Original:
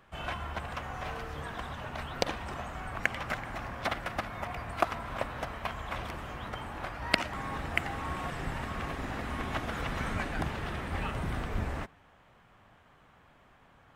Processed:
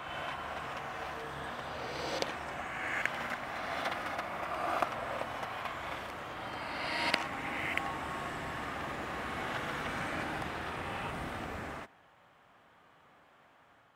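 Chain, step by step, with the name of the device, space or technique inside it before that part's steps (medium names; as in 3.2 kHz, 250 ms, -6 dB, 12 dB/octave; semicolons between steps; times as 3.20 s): ghost voice (reverse; reverberation RT60 2.2 s, pre-delay 38 ms, DRR -2.5 dB; reverse; high-pass 330 Hz 6 dB/octave); trim -4.5 dB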